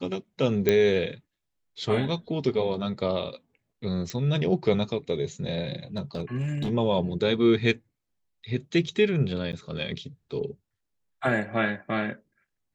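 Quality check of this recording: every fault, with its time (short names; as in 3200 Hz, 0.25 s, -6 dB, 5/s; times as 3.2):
0.69 pop -8 dBFS
4.1 pop -19 dBFS
5.96–6.71 clipped -24 dBFS
9.52–9.53 gap 9.5 ms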